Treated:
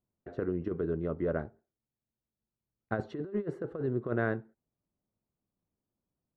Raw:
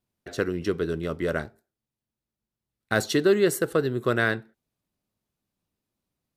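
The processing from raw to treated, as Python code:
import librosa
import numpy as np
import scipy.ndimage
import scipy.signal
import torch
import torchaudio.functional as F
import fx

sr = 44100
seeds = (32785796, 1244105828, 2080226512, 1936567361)

y = scipy.signal.sosfilt(scipy.signal.butter(2, 1000.0, 'lowpass', fs=sr, output='sos'), x)
y = fx.over_compress(y, sr, threshold_db=-25.0, ratio=-0.5)
y = F.gain(torch.from_numpy(y), -5.5).numpy()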